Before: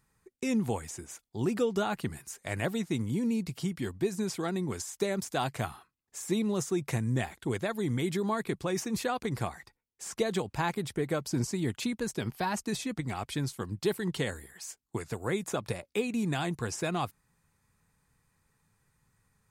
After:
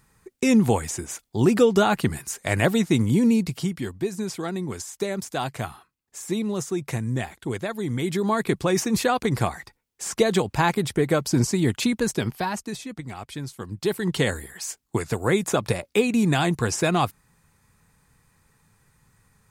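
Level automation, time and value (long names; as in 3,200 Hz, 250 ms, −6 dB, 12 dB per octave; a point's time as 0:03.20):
0:03.28 +11 dB
0:03.94 +3 dB
0:07.89 +3 dB
0:08.49 +9.5 dB
0:12.13 +9.5 dB
0:12.80 −1 dB
0:13.47 −1 dB
0:14.27 +10 dB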